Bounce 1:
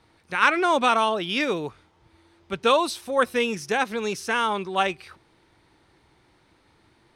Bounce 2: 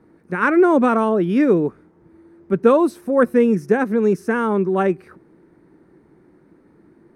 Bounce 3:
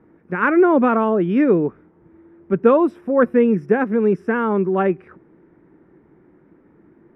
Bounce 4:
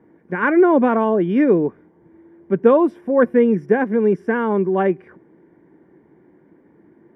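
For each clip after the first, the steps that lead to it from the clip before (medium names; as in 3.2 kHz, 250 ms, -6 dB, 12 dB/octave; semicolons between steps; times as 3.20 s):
FFT filter 110 Hz 0 dB, 170 Hz +14 dB, 380 Hz +13 dB, 810 Hz -1 dB, 1.7 kHz +1 dB, 3.3 kHz -18 dB, 13 kHz -3 dB
Savitzky-Golay filter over 25 samples
comb of notches 1.3 kHz; trim +1 dB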